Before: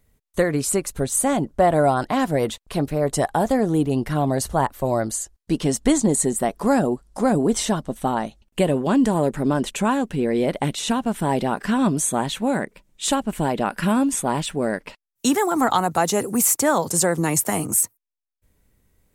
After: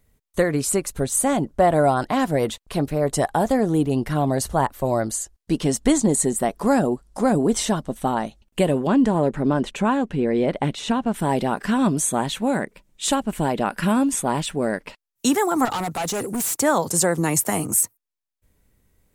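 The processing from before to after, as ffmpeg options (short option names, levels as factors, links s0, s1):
-filter_complex "[0:a]asettb=1/sr,asplit=3[s0][s1][s2];[s0]atrim=end=8.874[s3];[s1]atrim=start=8.87:end=11.14,asetpts=PTS-STARTPTS,afade=t=in:d=0.004:c=qsin,afade=t=out:st=2.266:d=0.004:c=qsin,aemphasis=mode=reproduction:type=50fm[s4];[s2]atrim=start=11.136[s5];[s3][s4]acrossfade=d=0.004:c1=hsin:c2=qsin[s6];[s6][s5]acrossfade=d=0.004:c1=qsin:c2=hsin,asettb=1/sr,asplit=3[s7][s8][s9];[s7]atrim=end=15.654[s10];[s8]atrim=start=15.65:end=16.6,asetpts=PTS-STARTPTS,afade=t=in:d=0.004:c=qsin,afade=t=out:st=0.946:d=0.004:c=qsin,asoftclip=type=hard:threshold=0.075[s11];[s9]atrim=start=16.596[s12];[s10][s11]acrossfade=d=0.004:c1=hsin:c2=qsin[s13];[s13][s12]acrossfade=d=0.004:c1=qsin:c2=hsin"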